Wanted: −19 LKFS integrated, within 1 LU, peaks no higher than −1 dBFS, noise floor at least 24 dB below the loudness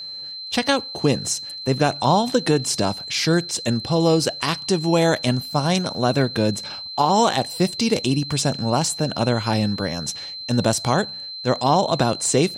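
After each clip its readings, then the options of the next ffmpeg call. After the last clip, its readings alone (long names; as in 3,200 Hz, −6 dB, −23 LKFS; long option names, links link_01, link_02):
interfering tone 4,100 Hz; level of the tone −31 dBFS; integrated loudness −21.0 LKFS; sample peak −6.0 dBFS; target loudness −19.0 LKFS
→ -af "bandreject=frequency=4100:width=30"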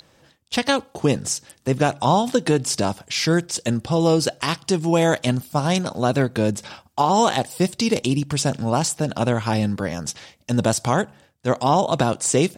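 interfering tone none found; integrated loudness −21.5 LKFS; sample peak −6.0 dBFS; target loudness −19.0 LKFS
→ -af "volume=2.5dB"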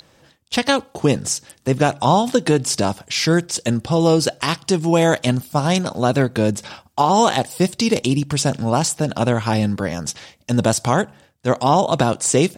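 integrated loudness −19.0 LKFS; sample peak −3.5 dBFS; background noise floor −56 dBFS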